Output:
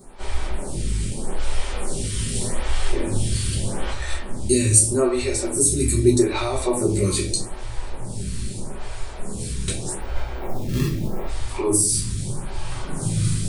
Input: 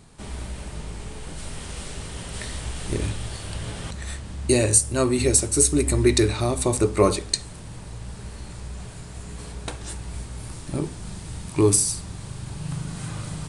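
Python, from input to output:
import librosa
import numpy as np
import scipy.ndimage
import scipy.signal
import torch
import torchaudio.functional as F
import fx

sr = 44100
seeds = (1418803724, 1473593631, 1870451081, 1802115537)

p1 = fx.high_shelf(x, sr, hz=8000.0, db=7.0)
p2 = fx.over_compress(p1, sr, threshold_db=-28.0, ratio=-1.0)
p3 = p1 + (p2 * librosa.db_to_amplitude(2.0))
p4 = fx.sample_hold(p3, sr, seeds[0], rate_hz=1500.0, jitter_pct=0, at=(10.01, 11.27))
p5 = fx.room_shoebox(p4, sr, seeds[1], volume_m3=37.0, walls='mixed', distance_m=1.1)
p6 = fx.stagger_phaser(p5, sr, hz=0.81)
y = p6 * librosa.db_to_amplitude(-7.5)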